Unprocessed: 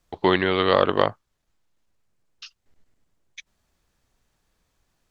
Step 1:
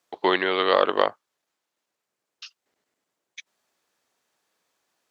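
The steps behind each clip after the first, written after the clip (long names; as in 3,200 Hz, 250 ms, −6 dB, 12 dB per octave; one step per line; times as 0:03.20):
high-pass filter 370 Hz 12 dB per octave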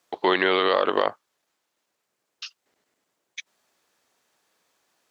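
boost into a limiter +11.5 dB
level −7 dB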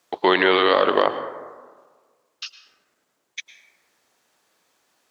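dense smooth reverb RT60 1.5 s, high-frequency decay 0.35×, pre-delay 95 ms, DRR 10.5 dB
level +3.5 dB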